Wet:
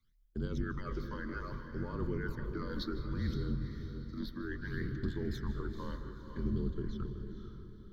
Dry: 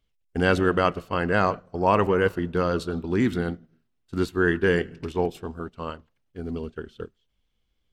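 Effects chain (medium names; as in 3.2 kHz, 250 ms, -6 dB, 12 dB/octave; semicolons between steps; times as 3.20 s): octave divider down 1 oct, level -2 dB; reverse; compression 6:1, threshold -30 dBFS, peak gain reduction 15 dB; reverse; peak limiter -28 dBFS, peak gain reduction 9 dB; phase shifter stages 12, 0.64 Hz, lowest notch 130–2000 Hz; frequency shift -36 Hz; static phaser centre 2.7 kHz, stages 6; echo that smears into a reverb 489 ms, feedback 40%, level -7.5 dB; on a send at -14 dB: reverberation RT60 0.55 s, pre-delay 154 ms; on the sum: trim +3 dB; Nellymoser 88 kbps 44.1 kHz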